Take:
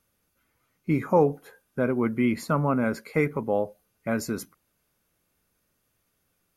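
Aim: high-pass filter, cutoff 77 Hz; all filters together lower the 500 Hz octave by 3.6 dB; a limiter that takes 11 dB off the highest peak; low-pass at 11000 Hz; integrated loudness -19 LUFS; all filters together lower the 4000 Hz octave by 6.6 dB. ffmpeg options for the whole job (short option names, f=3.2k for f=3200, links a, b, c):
-af "highpass=77,lowpass=11k,equalizer=f=500:t=o:g=-4,equalizer=f=4k:t=o:g=-9,volume=14dB,alimiter=limit=-7dB:level=0:latency=1"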